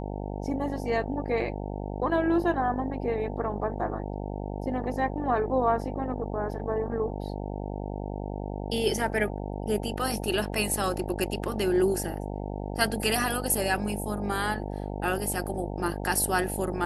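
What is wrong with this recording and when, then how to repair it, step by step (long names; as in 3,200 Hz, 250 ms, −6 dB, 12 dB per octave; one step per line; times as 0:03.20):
mains buzz 50 Hz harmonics 18 −34 dBFS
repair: hum removal 50 Hz, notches 18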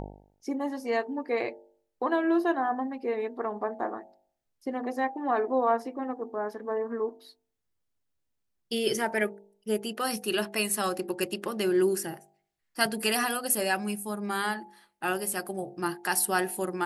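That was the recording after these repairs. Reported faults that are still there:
none of them is left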